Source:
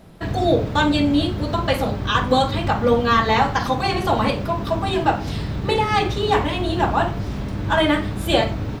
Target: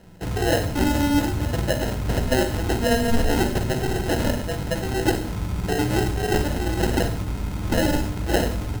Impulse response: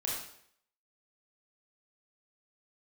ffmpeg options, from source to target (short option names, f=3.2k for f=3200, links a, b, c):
-filter_complex "[0:a]acrusher=samples=38:mix=1:aa=0.000001,asplit=2[a][b];[b]bass=f=250:g=15,treble=f=4k:g=7[c];[1:a]atrim=start_sample=2205,adelay=16[d];[c][d]afir=irnorm=-1:irlink=0,volume=-15.5dB[e];[a][e]amix=inputs=2:normalize=0,volume=-4.5dB"